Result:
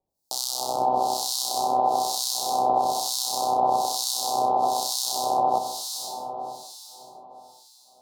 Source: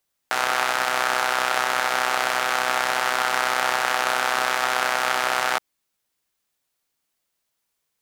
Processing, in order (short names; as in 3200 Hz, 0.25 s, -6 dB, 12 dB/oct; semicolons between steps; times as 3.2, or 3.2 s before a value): elliptic band-stop 850–4300 Hz, stop band 60 dB; 1.53–2.72 crackle 180/s -46 dBFS; diffused feedback echo 0.509 s, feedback 47%, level -4.5 dB; harmonic tremolo 1.1 Hz, depth 100%, crossover 1800 Hz; gain +6.5 dB